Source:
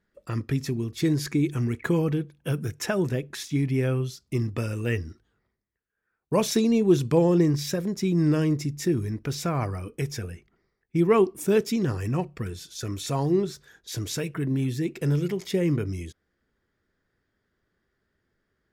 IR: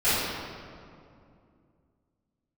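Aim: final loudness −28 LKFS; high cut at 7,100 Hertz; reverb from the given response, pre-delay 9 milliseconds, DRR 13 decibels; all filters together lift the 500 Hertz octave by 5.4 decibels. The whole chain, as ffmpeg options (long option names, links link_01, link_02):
-filter_complex "[0:a]lowpass=7100,equalizer=frequency=500:width_type=o:gain=7,asplit=2[link_01][link_02];[1:a]atrim=start_sample=2205,adelay=9[link_03];[link_02][link_03]afir=irnorm=-1:irlink=0,volume=-30dB[link_04];[link_01][link_04]amix=inputs=2:normalize=0,volume=-5dB"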